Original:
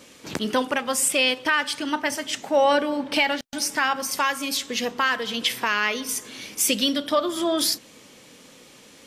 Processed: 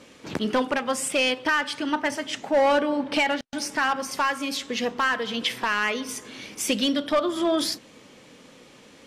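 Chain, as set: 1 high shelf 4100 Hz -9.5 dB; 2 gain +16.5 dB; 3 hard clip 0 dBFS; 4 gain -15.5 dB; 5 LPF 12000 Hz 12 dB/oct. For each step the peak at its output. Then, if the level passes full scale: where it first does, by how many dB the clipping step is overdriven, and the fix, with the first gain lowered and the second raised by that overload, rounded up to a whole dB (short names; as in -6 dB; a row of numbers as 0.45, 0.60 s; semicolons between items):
-10.5, +6.0, 0.0, -15.5, -15.0 dBFS; step 2, 6.0 dB; step 2 +10.5 dB, step 4 -9.5 dB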